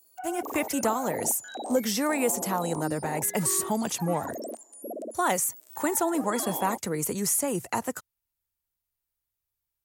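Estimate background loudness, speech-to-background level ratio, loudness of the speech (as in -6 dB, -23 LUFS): -38.0 LUFS, 10.0 dB, -28.0 LUFS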